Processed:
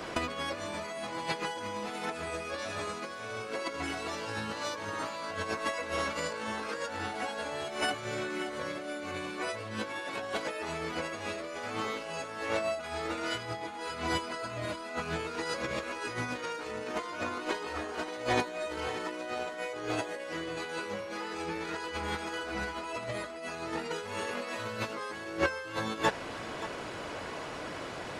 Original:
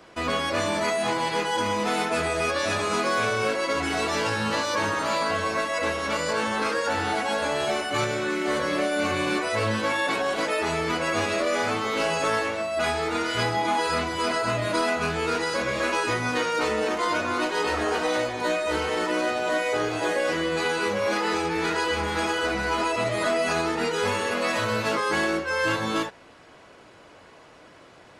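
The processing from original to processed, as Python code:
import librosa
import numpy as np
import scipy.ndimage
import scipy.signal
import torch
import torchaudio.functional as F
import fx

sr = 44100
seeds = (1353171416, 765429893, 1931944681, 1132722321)

y = fx.over_compress(x, sr, threshold_db=-33.0, ratio=-0.5)
y = y + 10.0 ** (-14.0 / 20.0) * np.pad(y, (int(575 * sr / 1000.0), 0))[:len(y)]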